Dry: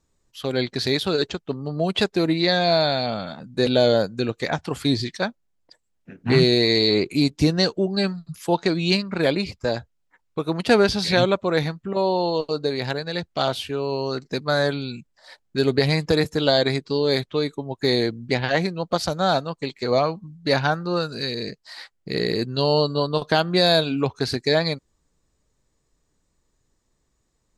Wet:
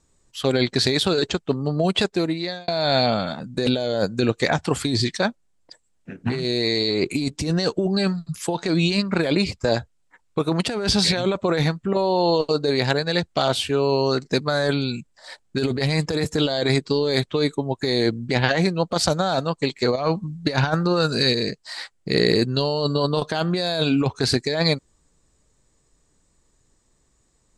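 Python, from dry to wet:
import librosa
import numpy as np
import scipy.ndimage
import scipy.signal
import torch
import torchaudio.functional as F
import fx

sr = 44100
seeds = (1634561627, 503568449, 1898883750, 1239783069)

y = fx.over_compress(x, sr, threshold_db=-24.0, ratio=-0.5, at=(19.94, 21.32), fade=0.02)
y = fx.edit(y, sr, fx.fade_out_span(start_s=1.66, length_s=1.02), tone=tone)
y = scipy.signal.sosfilt(scipy.signal.butter(4, 11000.0, 'lowpass', fs=sr, output='sos'), y)
y = fx.peak_eq(y, sr, hz=8000.0, db=6.5, octaves=0.41)
y = fx.over_compress(y, sr, threshold_db=-23.0, ratio=-1.0)
y = F.gain(torch.from_numpy(y), 3.0).numpy()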